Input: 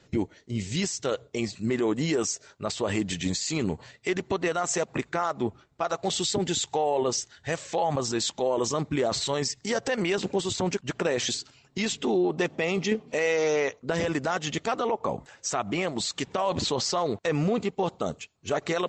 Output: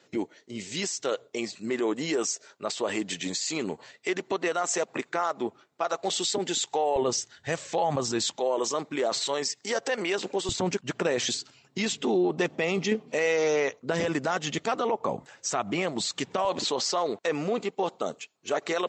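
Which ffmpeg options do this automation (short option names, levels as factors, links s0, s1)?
-af "asetnsamples=n=441:p=0,asendcmd='6.96 highpass f 110;8.36 highpass f 340;10.49 highpass f 130;16.45 highpass f 290',highpass=290"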